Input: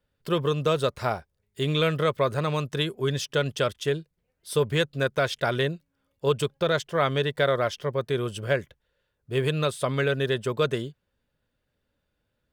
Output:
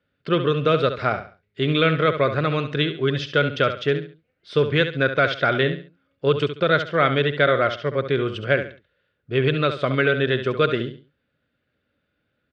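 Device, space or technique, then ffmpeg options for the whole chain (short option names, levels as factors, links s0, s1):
guitar cabinet: -af "highpass=89,equalizer=f=290:t=q:w=4:g=4,equalizer=f=930:t=q:w=4:g=-9,equalizer=f=1400:t=q:w=4:g=6,equalizer=f=2200:t=q:w=4:g=4,lowpass=f=4100:w=0.5412,lowpass=f=4100:w=1.3066,aecho=1:1:69|138|207:0.316|0.0917|0.0266,volume=1.58"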